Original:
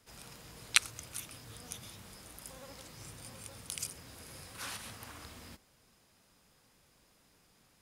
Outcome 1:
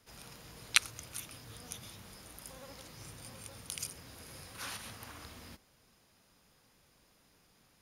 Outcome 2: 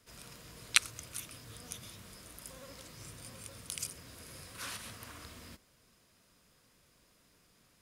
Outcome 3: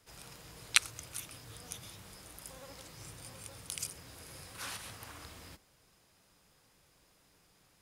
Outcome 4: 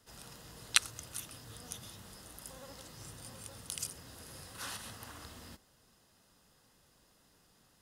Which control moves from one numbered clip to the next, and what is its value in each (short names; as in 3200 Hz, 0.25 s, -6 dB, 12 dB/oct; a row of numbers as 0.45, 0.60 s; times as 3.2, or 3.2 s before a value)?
notch, frequency: 7900, 820, 230, 2300 Hz